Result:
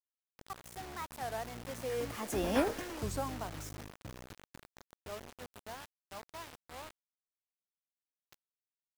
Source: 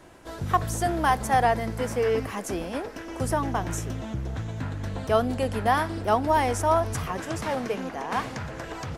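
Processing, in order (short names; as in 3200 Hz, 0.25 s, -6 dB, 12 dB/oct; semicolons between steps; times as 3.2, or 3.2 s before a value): Doppler pass-by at 2.59, 23 m/s, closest 2.8 m; bit-crush 8-bit; record warp 33 1/3 rpm, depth 250 cents; gain +2.5 dB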